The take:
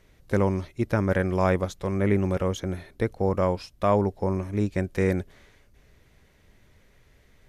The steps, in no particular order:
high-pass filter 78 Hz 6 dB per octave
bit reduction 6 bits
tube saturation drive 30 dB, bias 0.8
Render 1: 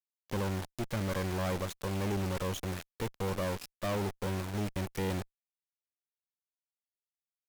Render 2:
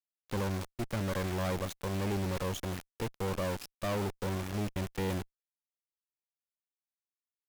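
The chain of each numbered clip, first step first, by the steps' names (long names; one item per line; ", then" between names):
bit reduction, then high-pass filter, then tube saturation
high-pass filter, then bit reduction, then tube saturation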